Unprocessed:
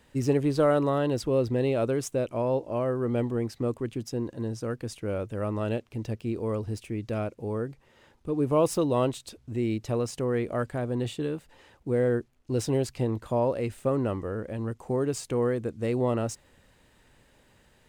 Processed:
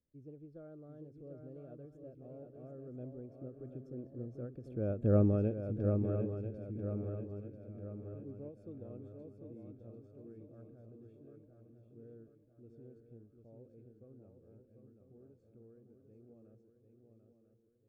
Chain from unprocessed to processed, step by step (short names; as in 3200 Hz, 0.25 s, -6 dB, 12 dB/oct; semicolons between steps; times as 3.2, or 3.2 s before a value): Doppler pass-by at 5.14, 18 m/s, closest 2.2 m; running mean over 45 samples; swung echo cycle 0.991 s, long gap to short 3:1, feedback 43%, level -6 dB; ending taper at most 160 dB/s; gain +7 dB